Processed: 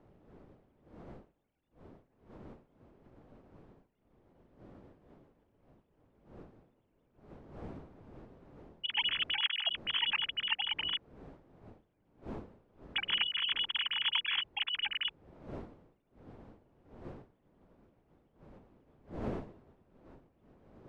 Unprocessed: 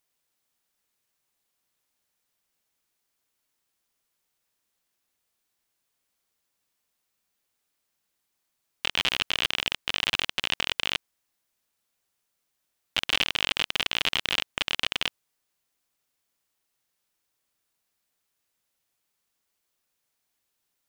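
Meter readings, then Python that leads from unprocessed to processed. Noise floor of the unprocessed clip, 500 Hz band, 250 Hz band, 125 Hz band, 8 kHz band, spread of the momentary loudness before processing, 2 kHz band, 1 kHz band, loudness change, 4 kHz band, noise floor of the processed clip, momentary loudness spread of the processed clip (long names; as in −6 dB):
−79 dBFS, −5.0 dB, −1.0 dB, −1.0 dB, below −35 dB, 5 LU, −7.0 dB, −7.5 dB, −6.0 dB, −4.0 dB, −75 dBFS, 18 LU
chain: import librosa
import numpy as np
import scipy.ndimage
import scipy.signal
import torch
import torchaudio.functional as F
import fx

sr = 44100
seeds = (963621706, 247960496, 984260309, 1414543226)

y = fx.sine_speech(x, sr)
y = fx.dmg_wind(y, sr, seeds[0], corner_hz=410.0, level_db=-47.0)
y = y * librosa.db_to_amplitude(-5.5)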